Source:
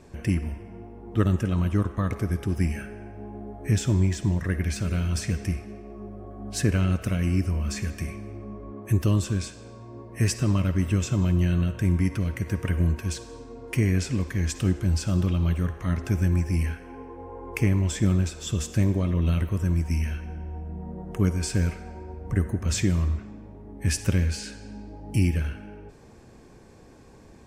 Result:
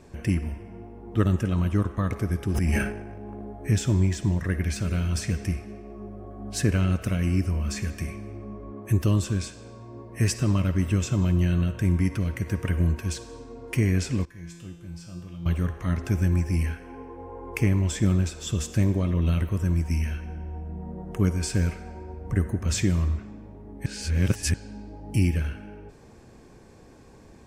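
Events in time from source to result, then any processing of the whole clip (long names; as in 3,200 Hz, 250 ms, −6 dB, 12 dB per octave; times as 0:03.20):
0:02.51–0:03.52: transient designer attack −4 dB, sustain +12 dB
0:14.25–0:15.46: tuned comb filter 170 Hz, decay 0.92 s, mix 90%
0:23.86–0:24.54: reverse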